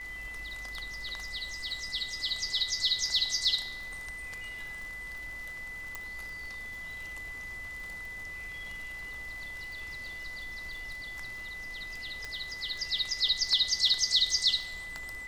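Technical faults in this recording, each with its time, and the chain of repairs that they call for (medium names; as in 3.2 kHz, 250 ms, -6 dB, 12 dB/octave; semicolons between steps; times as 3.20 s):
crackle 39 per s -40 dBFS
whine 2 kHz -39 dBFS
5.95 s: pop
12.25 s: pop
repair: de-click; band-stop 2 kHz, Q 30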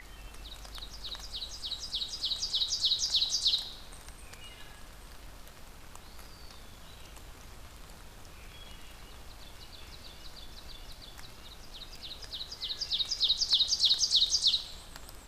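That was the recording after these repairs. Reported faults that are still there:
5.95 s: pop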